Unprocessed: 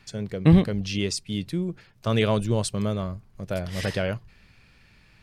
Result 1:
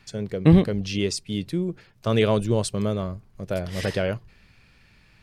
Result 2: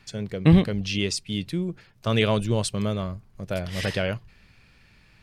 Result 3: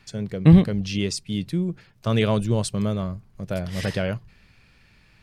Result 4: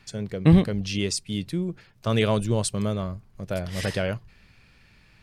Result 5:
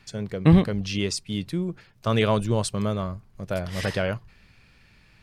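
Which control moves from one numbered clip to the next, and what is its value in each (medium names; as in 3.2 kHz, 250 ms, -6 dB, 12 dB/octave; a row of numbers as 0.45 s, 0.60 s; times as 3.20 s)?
dynamic bell, frequency: 410 Hz, 2.8 kHz, 160 Hz, 9.2 kHz, 1.1 kHz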